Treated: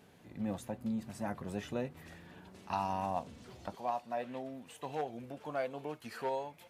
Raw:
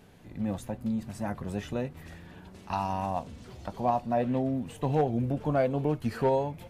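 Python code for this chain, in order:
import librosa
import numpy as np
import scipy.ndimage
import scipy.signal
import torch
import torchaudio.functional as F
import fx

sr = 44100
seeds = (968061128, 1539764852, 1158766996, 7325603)

y = fx.highpass(x, sr, hz=fx.steps((0.0, 160.0), (3.75, 1100.0)), slope=6)
y = F.gain(torch.from_numpy(y), -3.5).numpy()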